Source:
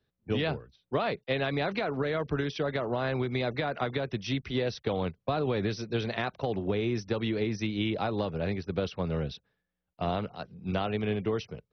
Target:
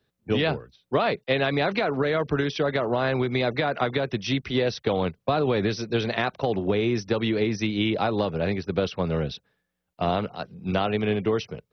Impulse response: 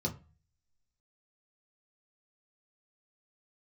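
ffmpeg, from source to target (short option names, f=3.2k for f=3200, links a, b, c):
-af "lowshelf=f=99:g=-7,volume=6.5dB"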